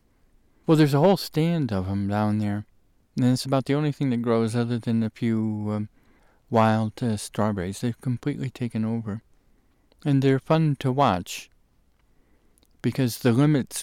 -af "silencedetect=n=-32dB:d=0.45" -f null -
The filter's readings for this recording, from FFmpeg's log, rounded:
silence_start: 0.00
silence_end: 0.68 | silence_duration: 0.68
silence_start: 2.61
silence_end: 3.17 | silence_duration: 0.56
silence_start: 5.85
silence_end: 6.52 | silence_duration: 0.67
silence_start: 9.18
silence_end: 10.05 | silence_duration: 0.88
silence_start: 11.42
silence_end: 12.84 | silence_duration: 1.42